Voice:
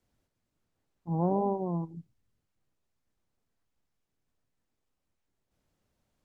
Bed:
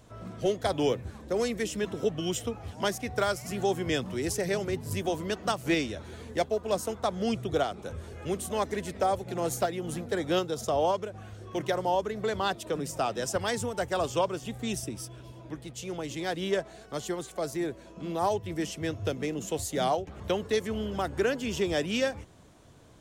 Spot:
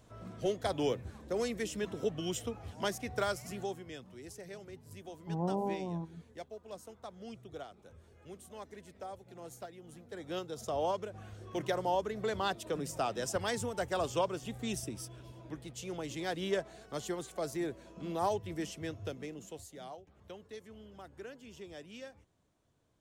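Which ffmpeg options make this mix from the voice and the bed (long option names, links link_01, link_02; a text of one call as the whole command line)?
ffmpeg -i stem1.wav -i stem2.wav -filter_complex "[0:a]adelay=4200,volume=-6dB[link_01];[1:a]volume=8dB,afade=type=out:start_time=3.37:duration=0.49:silence=0.237137,afade=type=in:start_time=10.03:duration=1.16:silence=0.211349,afade=type=out:start_time=18.27:duration=1.52:silence=0.16788[link_02];[link_01][link_02]amix=inputs=2:normalize=0" out.wav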